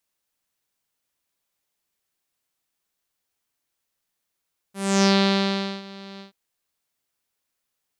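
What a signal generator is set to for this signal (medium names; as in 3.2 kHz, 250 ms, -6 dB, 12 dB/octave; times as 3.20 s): synth note saw G3 12 dB/octave, low-pass 4.1 kHz, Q 3.9, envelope 1.5 oct, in 0.41 s, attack 289 ms, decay 0.79 s, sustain -23 dB, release 0.12 s, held 1.46 s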